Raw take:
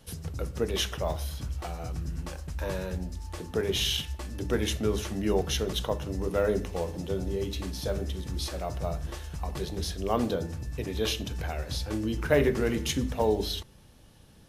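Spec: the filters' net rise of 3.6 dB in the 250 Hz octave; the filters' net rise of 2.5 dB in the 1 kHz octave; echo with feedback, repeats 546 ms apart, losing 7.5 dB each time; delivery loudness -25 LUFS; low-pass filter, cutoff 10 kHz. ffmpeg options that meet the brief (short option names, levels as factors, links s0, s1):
-af "lowpass=10000,equalizer=f=250:t=o:g=4.5,equalizer=f=1000:t=o:g=3,aecho=1:1:546|1092|1638|2184|2730:0.422|0.177|0.0744|0.0312|0.0131,volume=1.5"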